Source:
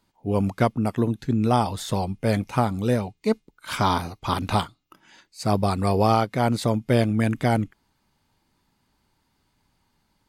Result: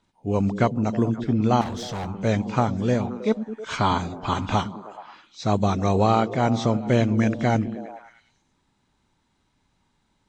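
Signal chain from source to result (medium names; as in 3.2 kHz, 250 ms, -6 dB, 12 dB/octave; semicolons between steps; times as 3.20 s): knee-point frequency compression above 2.8 kHz 1.5:1; repeats whose band climbs or falls 106 ms, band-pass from 180 Hz, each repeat 0.7 oct, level -6 dB; 1.61–2.07 s: overload inside the chain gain 27.5 dB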